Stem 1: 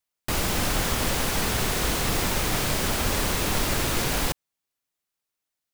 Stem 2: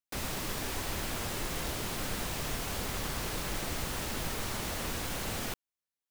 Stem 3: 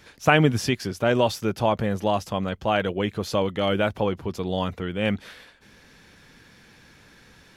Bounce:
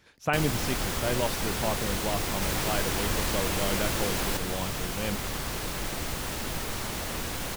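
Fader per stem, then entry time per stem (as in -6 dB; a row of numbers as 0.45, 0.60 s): -5.5, +2.5, -9.0 dB; 0.05, 2.30, 0.00 s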